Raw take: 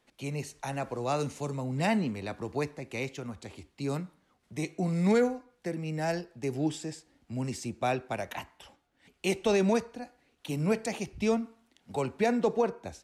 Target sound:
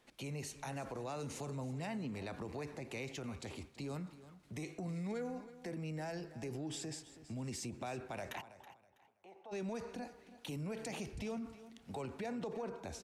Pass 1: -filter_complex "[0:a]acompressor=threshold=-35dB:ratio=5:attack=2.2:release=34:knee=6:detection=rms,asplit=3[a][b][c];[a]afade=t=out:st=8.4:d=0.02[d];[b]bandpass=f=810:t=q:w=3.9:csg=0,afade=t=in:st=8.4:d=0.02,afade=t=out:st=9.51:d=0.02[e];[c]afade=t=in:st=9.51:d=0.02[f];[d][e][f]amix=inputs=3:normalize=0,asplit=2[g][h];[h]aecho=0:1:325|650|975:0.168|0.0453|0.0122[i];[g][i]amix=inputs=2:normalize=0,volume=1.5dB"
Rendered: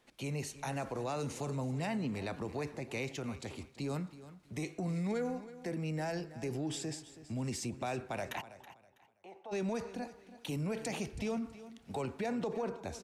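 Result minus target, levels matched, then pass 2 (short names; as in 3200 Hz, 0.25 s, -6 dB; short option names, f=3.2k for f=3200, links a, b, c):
compressor: peak gain reduction -5.5 dB
-filter_complex "[0:a]acompressor=threshold=-42dB:ratio=5:attack=2.2:release=34:knee=6:detection=rms,asplit=3[a][b][c];[a]afade=t=out:st=8.4:d=0.02[d];[b]bandpass=f=810:t=q:w=3.9:csg=0,afade=t=in:st=8.4:d=0.02,afade=t=out:st=9.51:d=0.02[e];[c]afade=t=in:st=9.51:d=0.02[f];[d][e][f]amix=inputs=3:normalize=0,asplit=2[g][h];[h]aecho=0:1:325|650|975:0.168|0.0453|0.0122[i];[g][i]amix=inputs=2:normalize=0,volume=1.5dB"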